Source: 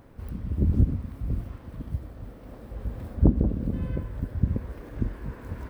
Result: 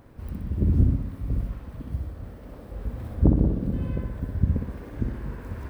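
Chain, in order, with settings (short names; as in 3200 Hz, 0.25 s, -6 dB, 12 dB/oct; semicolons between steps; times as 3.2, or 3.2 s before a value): flutter echo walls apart 10.6 m, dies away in 0.69 s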